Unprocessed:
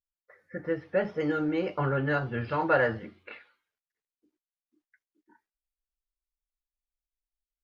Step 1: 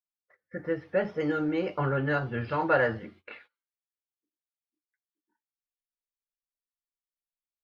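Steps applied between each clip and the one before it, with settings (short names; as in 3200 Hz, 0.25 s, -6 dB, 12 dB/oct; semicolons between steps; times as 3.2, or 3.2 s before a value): gate -54 dBFS, range -20 dB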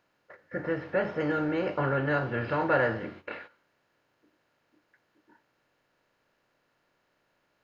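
per-bin compression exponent 0.6; gain -3 dB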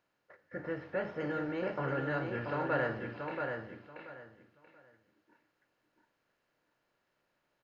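feedback echo 0.682 s, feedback 23%, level -5 dB; gain -7.5 dB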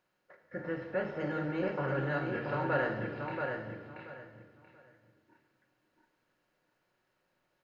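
shoebox room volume 1700 m³, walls mixed, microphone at 1 m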